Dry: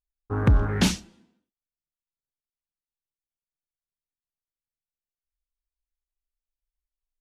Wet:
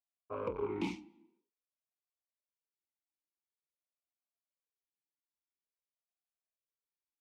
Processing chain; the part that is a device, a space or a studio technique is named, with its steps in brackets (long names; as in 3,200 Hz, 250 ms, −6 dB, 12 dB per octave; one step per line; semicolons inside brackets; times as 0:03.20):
talk box (tube saturation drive 26 dB, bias 0.65; formant filter swept between two vowels a-u 0.48 Hz)
level +8 dB